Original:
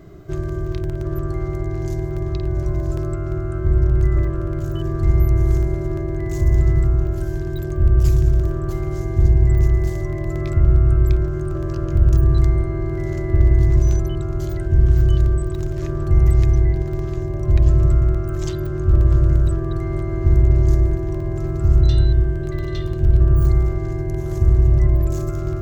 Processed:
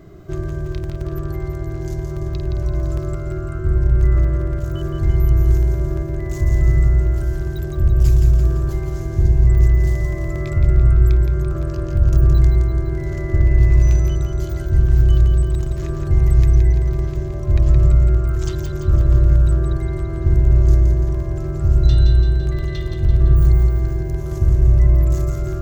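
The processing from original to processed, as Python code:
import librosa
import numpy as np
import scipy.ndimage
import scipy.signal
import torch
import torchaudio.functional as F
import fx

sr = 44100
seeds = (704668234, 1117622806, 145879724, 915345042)

p1 = fx.peak_eq(x, sr, hz=2500.0, db=8.5, octaves=0.23, at=(13.47, 13.96))
y = p1 + fx.echo_feedback(p1, sr, ms=169, feedback_pct=58, wet_db=-6.0, dry=0)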